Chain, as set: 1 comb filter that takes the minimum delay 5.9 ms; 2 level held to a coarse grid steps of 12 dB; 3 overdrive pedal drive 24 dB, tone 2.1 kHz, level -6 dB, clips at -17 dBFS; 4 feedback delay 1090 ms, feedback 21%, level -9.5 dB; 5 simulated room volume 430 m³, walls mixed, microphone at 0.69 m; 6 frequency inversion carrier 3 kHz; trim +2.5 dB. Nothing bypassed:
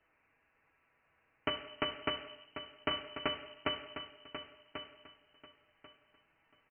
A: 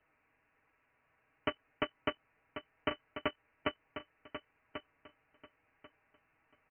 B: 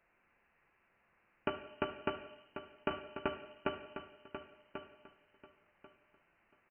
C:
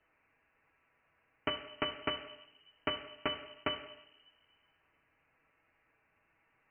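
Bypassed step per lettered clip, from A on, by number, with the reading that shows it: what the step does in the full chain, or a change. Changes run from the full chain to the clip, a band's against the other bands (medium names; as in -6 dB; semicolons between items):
5, crest factor change +1.5 dB; 1, 2 kHz band -4.5 dB; 4, momentary loudness spread change +4 LU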